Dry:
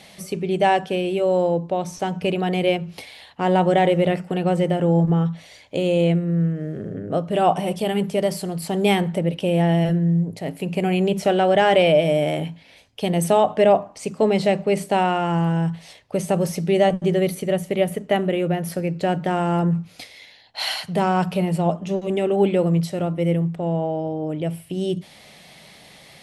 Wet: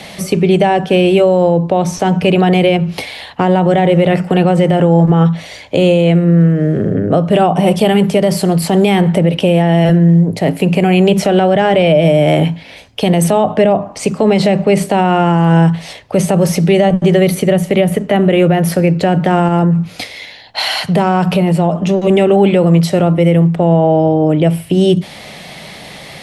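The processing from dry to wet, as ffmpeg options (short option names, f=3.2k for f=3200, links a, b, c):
-filter_complex "[0:a]asettb=1/sr,asplit=3[a][b][c];[a]atrim=end=19.484[d];[b]atrim=start=19.48:end=22.01,asetpts=PTS-STARTPTS,afade=t=in:d=0.004:c=qsin,afade=t=out:st=2.526:d=0.004:c=qsin,acompressor=threshold=-25dB:ratio=3:attack=3.2:release=140:knee=1:detection=peak[e];[c]atrim=start=22.006[f];[d][e]acrossfade=d=0.004:c1=hsin:c2=qsin[g];[g][f]acrossfade=d=0.004:c1=qsin:c2=hsin,acrossover=split=240|550[h][i][j];[h]acompressor=threshold=-26dB:ratio=4[k];[i]acompressor=threshold=-30dB:ratio=4[l];[j]acompressor=threshold=-27dB:ratio=4[m];[k][l][m]amix=inputs=3:normalize=0,highshelf=f=4.1k:g=-5.5,alimiter=level_in=17dB:limit=-1dB:release=50:level=0:latency=1,volume=-1dB"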